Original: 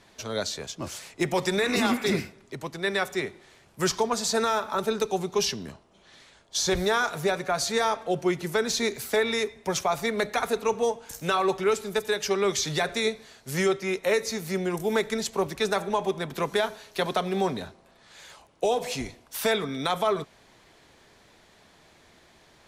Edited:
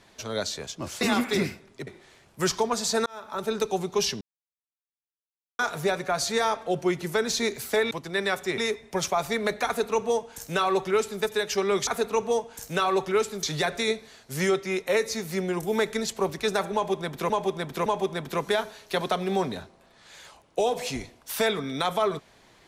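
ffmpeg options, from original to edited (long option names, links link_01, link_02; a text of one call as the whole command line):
ffmpeg -i in.wav -filter_complex "[0:a]asplit=12[link_01][link_02][link_03][link_04][link_05][link_06][link_07][link_08][link_09][link_10][link_11][link_12];[link_01]atrim=end=1.012[link_13];[link_02]atrim=start=1.738:end=2.602[link_14];[link_03]atrim=start=3.268:end=4.46,asetpts=PTS-STARTPTS,afade=type=out:start_time=1.188:duration=0.004:curve=hsin[link_15];[link_04]atrim=start=4.46:end=5.61,asetpts=PTS-STARTPTS,afade=type=in:duration=0.52,afade=type=out:start_time=1.146:duration=0.004:curve=hsin[link_16];[link_05]atrim=start=5.61:end=6.99,asetpts=PTS-STARTPTS,volume=0[link_17];[link_06]atrim=start=6.99:end=9.312,asetpts=PTS-STARTPTS,afade=type=in:duration=0.004:curve=hsin[link_18];[link_07]atrim=start=2.598:end=3.272[link_19];[link_08]atrim=start=9.308:end=12.602[link_20];[link_09]atrim=start=10.388:end=11.952[link_21];[link_10]atrim=start=12.598:end=16.472[link_22];[link_11]atrim=start=15.908:end=16.472[link_23];[link_12]atrim=start=15.908[link_24];[link_13][link_14]acrossfade=duration=0.004:curve1=hsin:curve2=hsin[link_25];[link_15][link_16][link_17][link_18]concat=n=4:v=0:a=1[link_26];[link_25][link_26]acrossfade=duration=0.004:curve1=hsin:curve2=hsin[link_27];[link_27][link_19]acrossfade=duration=0.004:curve1=hsin:curve2=hsin[link_28];[link_28][link_20]acrossfade=duration=0.004:curve1=hsin:curve2=hsin[link_29];[link_29][link_21]acrossfade=duration=0.004:curve1=hsin:curve2=hsin[link_30];[link_30][link_22]acrossfade=duration=0.004:curve1=hsin:curve2=hsin[link_31];[link_31][link_23]acrossfade=duration=0.004:curve1=hsin:curve2=hsin[link_32];[link_32][link_24]acrossfade=duration=0.004:curve1=hsin:curve2=hsin" out.wav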